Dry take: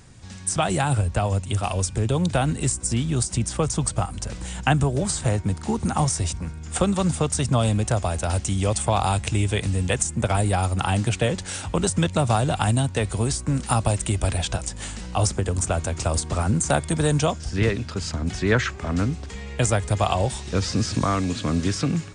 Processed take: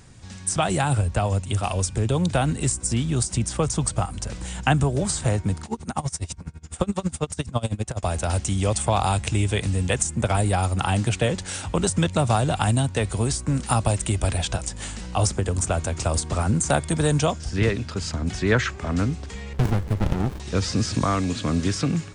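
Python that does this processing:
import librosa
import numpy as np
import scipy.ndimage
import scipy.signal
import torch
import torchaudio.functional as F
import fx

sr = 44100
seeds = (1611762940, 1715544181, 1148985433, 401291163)

y = fx.tremolo_db(x, sr, hz=12.0, depth_db=24, at=(5.65, 8.03))
y = fx.running_max(y, sr, window=65, at=(19.53, 20.4))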